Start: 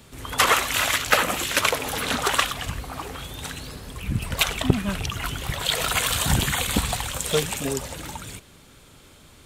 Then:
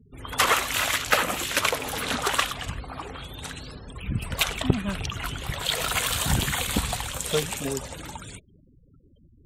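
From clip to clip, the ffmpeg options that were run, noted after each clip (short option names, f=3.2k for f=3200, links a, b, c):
-af "afftfilt=real='re*gte(hypot(re,im),0.00891)':imag='im*gte(hypot(re,im),0.00891)':win_size=1024:overlap=0.75,volume=-2.5dB"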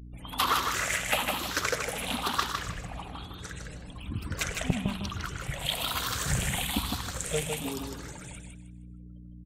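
-filter_complex "[0:a]afftfilt=real='re*pow(10,11/40*sin(2*PI*(0.52*log(max(b,1)*sr/1024/100)/log(2)-(1.1)*(pts-256)/sr)))':imag='im*pow(10,11/40*sin(2*PI*(0.52*log(max(b,1)*sr/1024/100)/log(2)-(1.1)*(pts-256)/sr)))':win_size=1024:overlap=0.75,aeval=exprs='val(0)+0.0158*(sin(2*PI*60*n/s)+sin(2*PI*2*60*n/s)/2+sin(2*PI*3*60*n/s)/3+sin(2*PI*4*60*n/s)/4+sin(2*PI*5*60*n/s)/5)':c=same,asplit=2[a][b];[b]aecho=0:1:156|312|468|624:0.562|0.152|0.041|0.0111[c];[a][c]amix=inputs=2:normalize=0,volume=-7.5dB"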